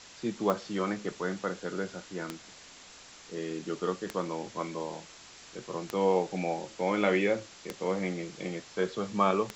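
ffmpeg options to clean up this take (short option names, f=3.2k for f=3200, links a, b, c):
-af "adeclick=t=4,afwtdn=0.0045"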